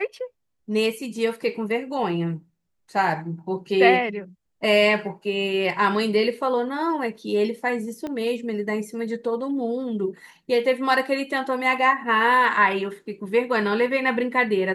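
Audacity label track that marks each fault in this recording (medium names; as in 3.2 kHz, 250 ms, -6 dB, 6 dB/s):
8.070000	8.070000	pop -19 dBFS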